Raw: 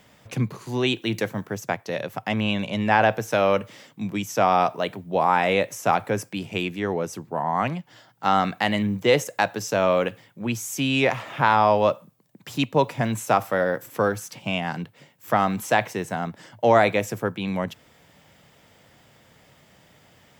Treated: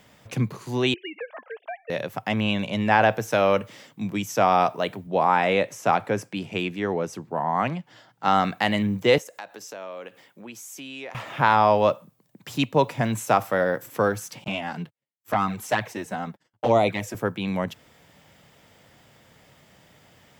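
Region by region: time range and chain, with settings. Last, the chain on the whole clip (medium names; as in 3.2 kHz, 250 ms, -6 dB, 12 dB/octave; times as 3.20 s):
0.94–1.90 s: formants replaced by sine waves + high-pass 450 Hz 24 dB/octave + compression 5:1, threshold -30 dBFS
5.07–8.28 s: high-pass 100 Hz + de-esser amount 60% + treble shelf 9.3 kHz -10 dB
9.18–11.15 s: high-pass 280 Hz + compression 2.5:1, threshold -42 dBFS
14.44–17.15 s: gate -44 dBFS, range -40 dB + touch-sensitive flanger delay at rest 11.3 ms, full sweep at -12.5 dBFS
whole clip: none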